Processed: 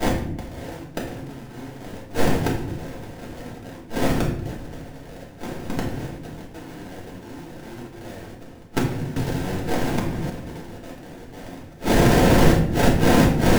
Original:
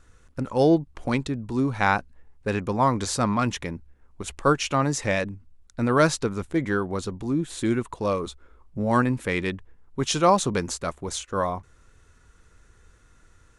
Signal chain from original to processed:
compressor on every frequency bin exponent 0.4
in parallel at −2.5 dB: compressor whose output falls as the input rises −26 dBFS, ratio −1
on the sum: downward expander −17 dBFS
0:04.77–0:05.84: low-shelf EQ 400 Hz −12 dB
sample-rate reduction 1,200 Hz, jitter 20%
parametric band 550 Hz +2 dB 1.8 octaves
gate with flip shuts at −17 dBFS, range −34 dB
notch filter 600 Hz, Q 12
convolution reverb RT60 0.75 s, pre-delay 3 ms, DRR −5 dB
0:09.16–0:10.30: multiband upward and downward compressor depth 100%
level +5 dB

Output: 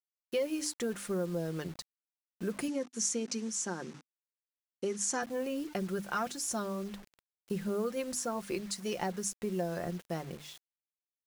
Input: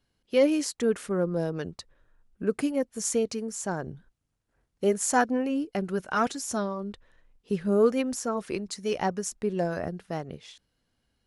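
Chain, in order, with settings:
high-shelf EQ 5,600 Hz +5 dB
mains-hum notches 50/100/150/200/250/300 Hz
comb filter 5.7 ms, depth 44%
downward compressor 4 to 1, threshold −27 dBFS, peak gain reduction 11 dB
bit reduction 8 bits
0:02.68–0:05.23: loudspeaker in its box 220–9,000 Hz, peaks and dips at 250 Hz +8 dB, 650 Hz −9 dB, 5,900 Hz +6 dB
level −3.5 dB

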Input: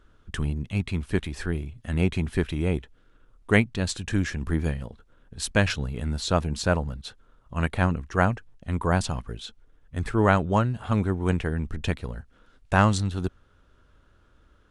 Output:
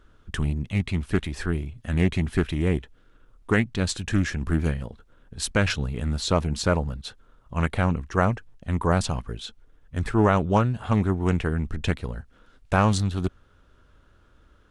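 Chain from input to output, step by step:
boost into a limiter +9 dB
highs frequency-modulated by the lows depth 0.24 ms
level −7 dB

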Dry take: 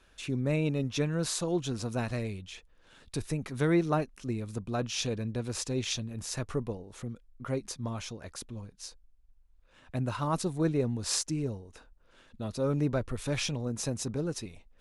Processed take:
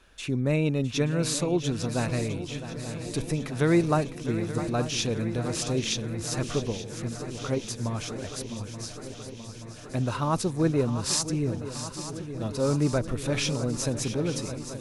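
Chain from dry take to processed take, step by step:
feedback echo with a long and a short gap by turns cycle 878 ms, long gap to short 3 to 1, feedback 70%, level −12 dB
level +4 dB

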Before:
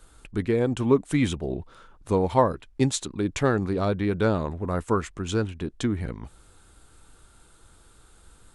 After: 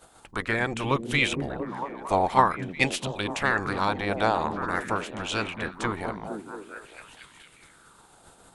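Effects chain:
ceiling on every frequency bin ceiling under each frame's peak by 20 dB
echo through a band-pass that steps 228 ms, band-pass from 170 Hz, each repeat 0.7 octaves, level −0.5 dB
auto-filter bell 0.48 Hz 700–3,100 Hz +11 dB
level −5.5 dB

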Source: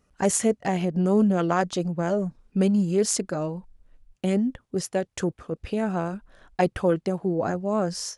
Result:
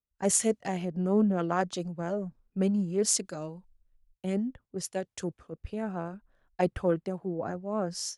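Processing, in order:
multiband upward and downward expander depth 70%
level −6.5 dB

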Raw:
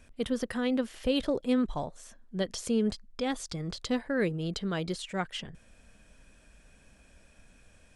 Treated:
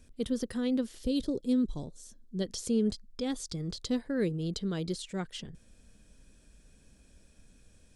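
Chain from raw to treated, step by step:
flat-topped bell 1,300 Hz −9 dB 2.6 octaves, from 0:00.97 −16 dB, from 0:02.40 −8.5 dB

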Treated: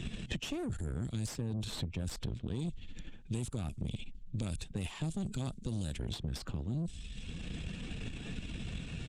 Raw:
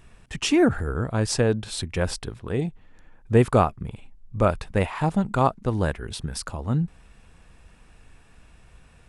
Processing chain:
spectral magnitudes quantised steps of 15 dB
low-pass that shuts in the quiet parts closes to 2,300 Hz, open at −18 dBFS
drawn EQ curve 210 Hz 0 dB, 990 Hz −20 dB, 1,900 Hz −13 dB, 3,400 Hz +2 dB, 5,100 Hz −1 dB, 7,400 Hz +8 dB, 11,000 Hz +2 dB
reversed playback
downward compressor 12 to 1, threshold −32 dBFS, peak gain reduction 18.5 dB
reversed playback
brickwall limiter −30 dBFS, peak gain reduction 8.5 dB
tube saturation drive 37 dB, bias 0.7
downsampling to 32,000 Hz
multiband upward and downward compressor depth 100%
level +6 dB

